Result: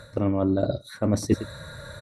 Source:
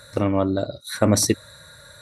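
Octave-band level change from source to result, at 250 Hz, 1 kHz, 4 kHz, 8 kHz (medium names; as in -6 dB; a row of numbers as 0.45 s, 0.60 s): -2.0 dB, -6.5 dB, -11.0 dB, -15.0 dB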